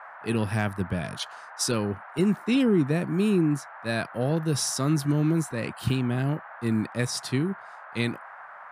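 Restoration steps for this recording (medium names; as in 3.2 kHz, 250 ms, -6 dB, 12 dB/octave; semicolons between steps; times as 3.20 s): clip repair -12.5 dBFS; noise print and reduce 27 dB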